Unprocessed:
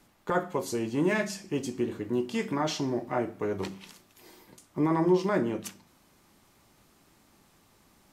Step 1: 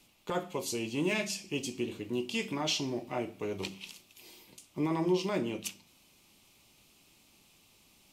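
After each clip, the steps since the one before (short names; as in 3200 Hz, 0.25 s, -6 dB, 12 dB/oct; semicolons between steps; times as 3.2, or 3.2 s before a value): resonant high shelf 2100 Hz +6.5 dB, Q 3; gain -5 dB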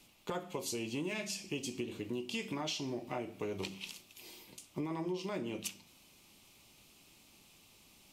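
compressor 6:1, threshold -36 dBFS, peak gain reduction 12 dB; gain +1 dB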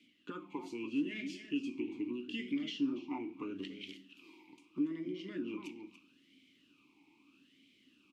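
outdoor echo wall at 49 m, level -9 dB; vowel sweep i-u 0.78 Hz; gain +9 dB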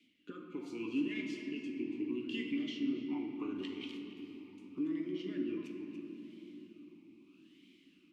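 rotary speaker horn 0.75 Hz; on a send at -3 dB: reverb RT60 3.8 s, pre-delay 3 ms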